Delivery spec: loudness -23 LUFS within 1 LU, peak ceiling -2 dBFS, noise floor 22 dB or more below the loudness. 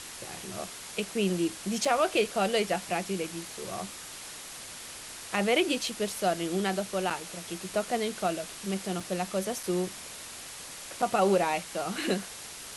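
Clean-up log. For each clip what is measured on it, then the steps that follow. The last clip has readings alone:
dropouts 5; longest dropout 4.2 ms; noise floor -43 dBFS; noise floor target -53 dBFS; loudness -31.0 LUFS; peak level -12.0 dBFS; loudness target -23.0 LUFS
-> interpolate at 1.85/7.10/9.00/9.63/11.02 s, 4.2 ms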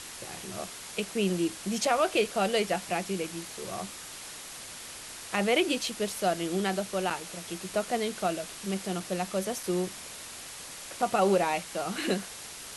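dropouts 0; noise floor -43 dBFS; noise floor target -53 dBFS
-> noise reduction 10 dB, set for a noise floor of -43 dBFS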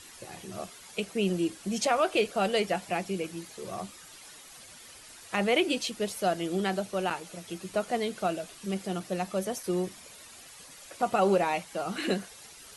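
noise floor -50 dBFS; noise floor target -53 dBFS
-> noise reduction 6 dB, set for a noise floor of -50 dBFS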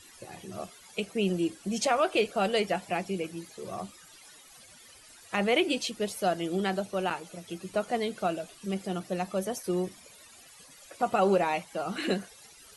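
noise floor -54 dBFS; loudness -30.5 LUFS; peak level -12.5 dBFS; loudness target -23.0 LUFS
-> trim +7.5 dB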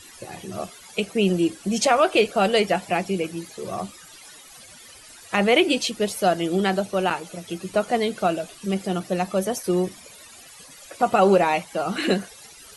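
loudness -23.0 LUFS; peak level -5.0 dBFS; noise floor -46 dBFS

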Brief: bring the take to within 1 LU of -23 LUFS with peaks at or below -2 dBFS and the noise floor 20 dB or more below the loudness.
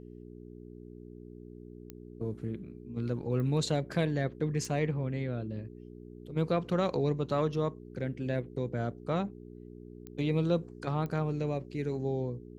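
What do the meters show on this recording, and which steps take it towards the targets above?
clicks found 5; hum 60 Hz; highest harmonic 420 Hz; hum level -46 dBFS; loudness -33.0 LUFS; peak level -17.0 dBFS; loudness target -23.0 LUFS
-> de-click; de-hum 60 Hz, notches 7; trim +10 dB

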